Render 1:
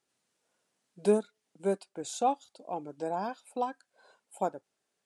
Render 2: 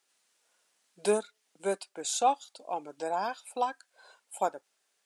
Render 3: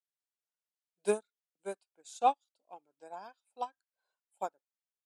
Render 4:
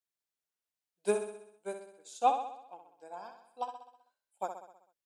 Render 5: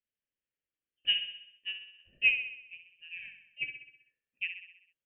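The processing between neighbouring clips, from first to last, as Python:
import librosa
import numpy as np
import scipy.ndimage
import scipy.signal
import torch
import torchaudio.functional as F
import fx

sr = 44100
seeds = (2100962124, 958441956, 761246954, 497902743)

y1 = fx.highpass(x, sr, hz=1200.0, slope=6)
y1 = y1 * librosa.db_to_amplitude(8.0)
y2 = fx.upward_expand(y1, sr, threshold_db=-40.0, expansion=2.5)
y3 = fx.echo_feedback(y2, sr, ms=64, feedback_pct=56, wet_db=-8)
y4 = fx.freq_invert(y3, sr, carrier_hz=3300)
y4 = fx.curve_eq(y4, sr, hz=(550.0, 840.0, 1700.0), db=(0, -23, -2))
y4 = y4 * librosa.db_to_amplitude(2.5)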